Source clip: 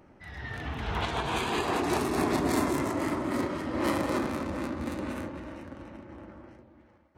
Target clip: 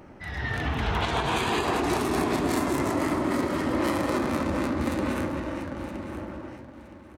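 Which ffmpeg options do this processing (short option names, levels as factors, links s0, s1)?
-filter_complex "[0:a]acompressor=threshold=0.0282:ratio=6,asplit=2[s0][s1];[s1]aecho=0:1:968|1936|2904:0.224|0.0515|0.0118[s2];[s0][s2]amix=inputs=2:normalize=0,volume=2.66"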